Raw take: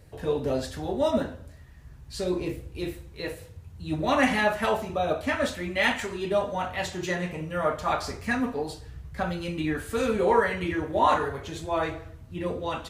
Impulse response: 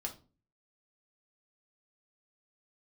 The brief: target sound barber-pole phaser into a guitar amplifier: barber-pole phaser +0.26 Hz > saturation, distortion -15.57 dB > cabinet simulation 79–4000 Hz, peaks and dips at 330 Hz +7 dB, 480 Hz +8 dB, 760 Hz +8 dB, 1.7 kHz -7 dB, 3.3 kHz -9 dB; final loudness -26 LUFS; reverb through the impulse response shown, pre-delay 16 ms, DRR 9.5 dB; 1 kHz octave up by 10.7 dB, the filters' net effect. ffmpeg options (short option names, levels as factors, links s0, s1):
-filter_complex "[0:a]equalizer=f=1000:t=o:g=8.5,asplit=2[s0][s1];[1:a]atrim=start_sample=2205,adelay=16[s2];[s1][s2]afir=irnorm=-1:irlink=0,volume=0.355[s3];[s0][s3]amix=inputs=2:normalize=0,asplit=2[s4][s5];[s5]afreqshift=0.26[s6];[s4][s6]amix=inputs=2:normalize=1,asoftclip=threshold=0.15,highpass=79,equalizer=f=330:t=q:w=4:g=7,equalizer=f=480:t=q:w=4:g=8,equalizer=f=760:t=q:w=4:g=8,equalizer=f=1700:t=q:w=4:g=-7,equalizer=f=3300:t=q:w=4:g=-9,lowpass=f=4000:w=0.5412,lowpass=f=4000:w=1.3066,volume=0.891"